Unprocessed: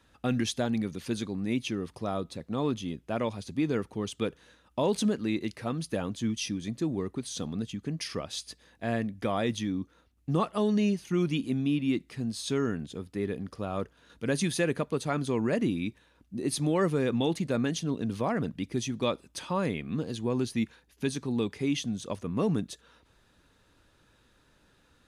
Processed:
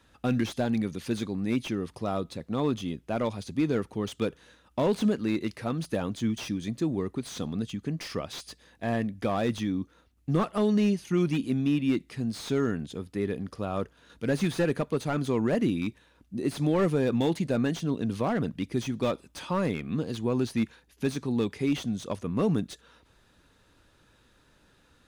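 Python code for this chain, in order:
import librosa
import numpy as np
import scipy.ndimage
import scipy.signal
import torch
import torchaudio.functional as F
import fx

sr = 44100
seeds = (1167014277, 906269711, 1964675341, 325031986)

y = fx.slew_limit(x, sr, full_power_hz=46.0)
y = y * librosa.db_to_amplitude(2.0)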